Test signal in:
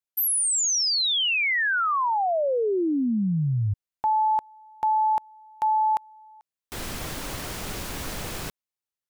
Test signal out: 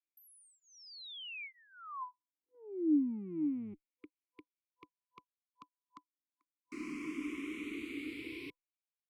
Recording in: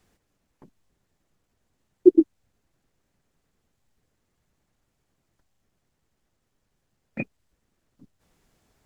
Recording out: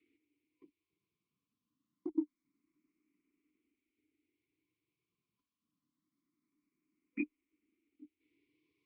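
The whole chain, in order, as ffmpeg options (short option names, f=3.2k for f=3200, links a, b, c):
-filter_complex "[0:a]afftfilt=real='re*(1-between(b*sr/4096,500,1000))':imag='im*(1-between(b*sr/4096,500,1000))':win_size=4096:overlap=0.75,highshelf=f=2k:g=3.5,acrossover=split=140[a][b];[a]aeval=exprs='abs(val(0))':c=same[c];[b]acompressor=threshold=-35dB:ratio=6:attack=83:release=49:knee=1:detection=rms[d];[c][d]amix=inputs=2:normalize=0,asplit=3[e][f][g];[e]bandpass=f=300:t=q:w=8,volume=0dB[h];[f]bandpass=f=870:t=q:w=8,volume=-6dB[i];[g]bandpass=f=2.24k:t=q:w=8,volume=-9dB[j];[h][i][j]amix=inputs=3:normalize=0,asplit=2[k][l];[l]afreqshift=0.25[m];[k][m]amix=inputs=2:normalize=1,volume=7.5dB"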